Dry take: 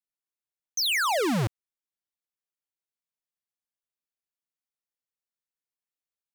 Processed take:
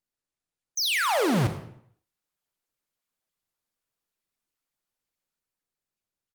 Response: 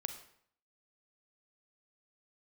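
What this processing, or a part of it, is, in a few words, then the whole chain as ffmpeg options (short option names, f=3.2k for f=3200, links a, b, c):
speakerphone in a meeting room: -filter_complex "[1:a]atrim=start_sample=2205[a];[0:a][a]afir=irnorm=-1:irlink=0,asplit=2[b][c];[c]adelay=190,highpass=300,lowpass=3.4k,asoftclip=type=hard:threshold=-28dB,volume=-30dB[d];[b][d]amix=inputs=2:normalize=0,dynaudnorm=f=280:g=11:m=7dB" -ar 48000 -c:a libopus -b:a 32k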